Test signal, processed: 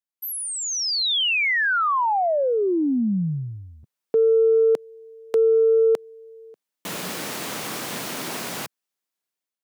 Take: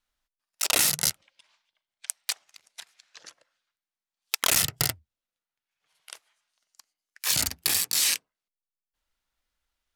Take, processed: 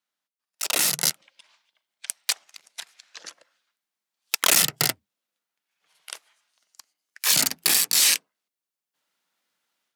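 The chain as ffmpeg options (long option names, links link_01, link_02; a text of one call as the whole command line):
ffmpeg -i in.wav -af "asoftclip=type=tanh:threshold=-12.5dB,dynaudnorm=framelen=580:gausssize=3:maxgain=10dB,highpass=frequency=160:width=0.5412,highpass=frequency=160:width=1.3066,volume=-3dB" out.wav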